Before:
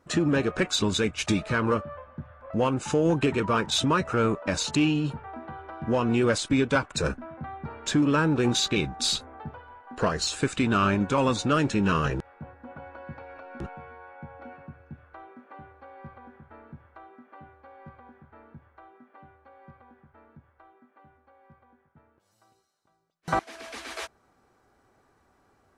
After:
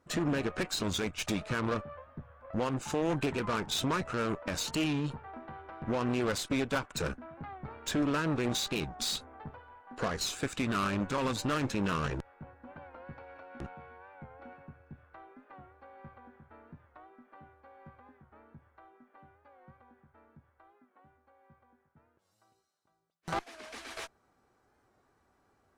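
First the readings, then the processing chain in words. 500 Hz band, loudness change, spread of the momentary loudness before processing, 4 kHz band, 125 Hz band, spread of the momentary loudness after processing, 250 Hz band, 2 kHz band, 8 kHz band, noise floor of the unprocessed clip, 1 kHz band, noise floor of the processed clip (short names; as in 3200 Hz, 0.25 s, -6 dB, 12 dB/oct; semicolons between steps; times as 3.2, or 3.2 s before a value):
-8.0 dB, -7.5 dB, 20 LU, -6.5 dB, -8.0 dB, 19 LU, -7.5 dB, -6.5 dB, -6.0 dB, -67 dBFS, -7.0 dB, -73 dBFS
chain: added harmonics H 2 -9 dB, 8 -18 dB, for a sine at -13 dBFS; limiter -14.5 dBFS, peak gain reduction 5.5 dB; record warp 45 rpm, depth 100 cents; gain -6 dB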